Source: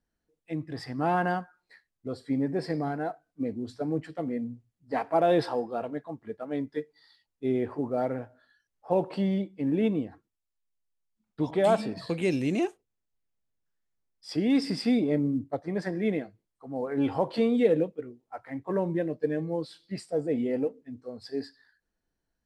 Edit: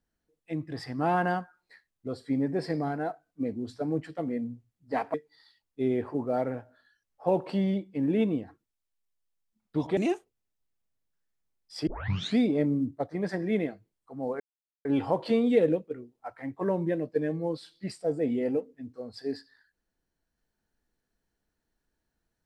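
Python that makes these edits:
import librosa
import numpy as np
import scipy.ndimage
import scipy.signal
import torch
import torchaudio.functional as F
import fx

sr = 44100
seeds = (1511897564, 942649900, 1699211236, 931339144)

y = fx.edit(x, sr, fx.cut(start_s=5.14, length_s=1.64),
    fx.cut(start_s=11.61, length_s=0.89),
    fx.tape_start(start_s=14.4, length_s=0.51),
    fx.insert_silence(at_s=16.93, length_s=0.45), tone=tone)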